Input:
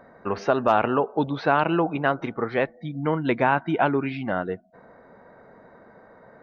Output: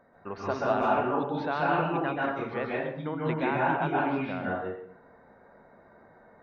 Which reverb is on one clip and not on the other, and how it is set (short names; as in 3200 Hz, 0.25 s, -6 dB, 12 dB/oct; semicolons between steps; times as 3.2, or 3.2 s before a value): plate-style reverb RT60 0.73 s, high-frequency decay 0.75×, pre-delay 0.12 s, DRR -5 dB; gain -11 dB